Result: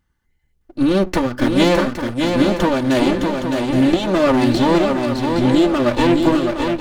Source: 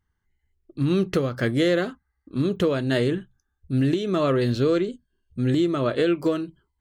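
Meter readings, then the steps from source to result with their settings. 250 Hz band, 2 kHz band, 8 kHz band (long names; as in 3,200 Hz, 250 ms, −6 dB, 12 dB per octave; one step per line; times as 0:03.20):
+8.5 dB, +8.0 dB, can't be measured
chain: lower of the sound and its delayed copy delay 3.4 ms
feedback echo with a long and a short gap by turns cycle 816 ms, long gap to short 3 to 1, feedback 39%, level −5 dB
level +7.5 dB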